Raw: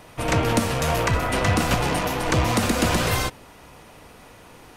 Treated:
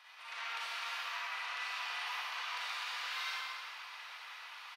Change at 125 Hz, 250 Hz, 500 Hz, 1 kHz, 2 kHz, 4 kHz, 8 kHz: under -40 dB, under -40 dB, -34.5 dB, -16.5 dB, -11.5 dB, -10.5 dB, -22.5 dB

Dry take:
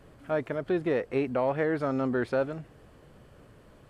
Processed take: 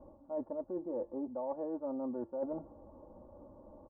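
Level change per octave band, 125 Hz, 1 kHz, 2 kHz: -21.5 dB, -11.5 dB, under -35 dB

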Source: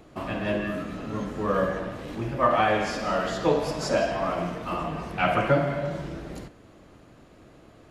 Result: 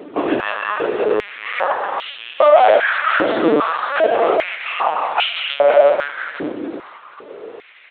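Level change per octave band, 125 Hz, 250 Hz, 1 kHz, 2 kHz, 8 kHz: -11.0 dB, +5.0 dB, +10.0 dB, +11.5 dB, under -20 dB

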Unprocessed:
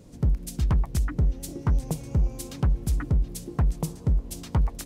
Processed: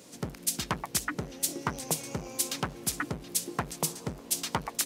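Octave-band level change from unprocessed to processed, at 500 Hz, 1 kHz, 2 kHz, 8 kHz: +0.5 dB, +4.5 dB, +8.0 dB, +10.5 dB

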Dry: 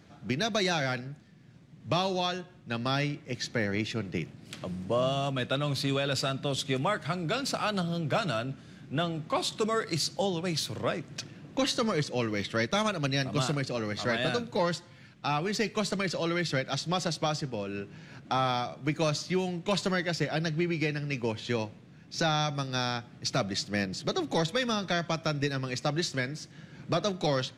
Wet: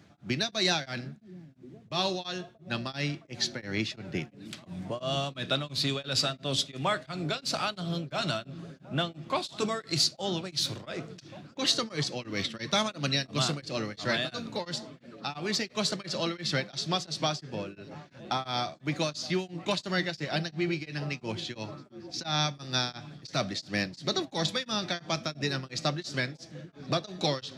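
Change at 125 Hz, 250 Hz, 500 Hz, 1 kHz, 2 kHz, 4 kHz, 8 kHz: -2.5 dB, -2.5 dB, -3.5 dB, -2.5 dB, -1.5 dB, +3.0 dB, +1.5 dB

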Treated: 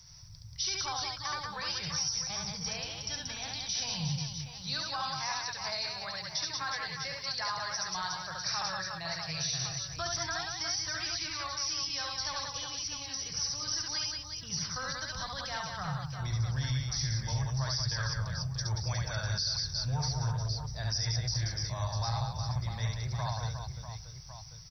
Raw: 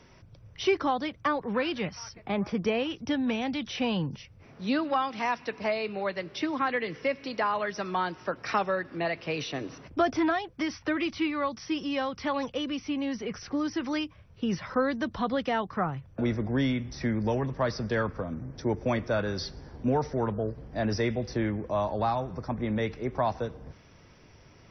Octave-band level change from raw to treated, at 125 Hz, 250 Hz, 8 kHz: +2.0 dB, -16.5 dB, no reading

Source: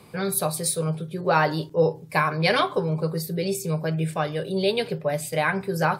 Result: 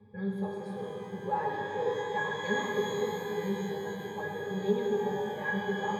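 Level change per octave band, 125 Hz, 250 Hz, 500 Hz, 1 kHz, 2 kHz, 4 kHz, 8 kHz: -14.0 dB, -7.0 dB, -7.0 dB, -8.0 dB, -7.0 dB, -12.0 dB, -19.5 dB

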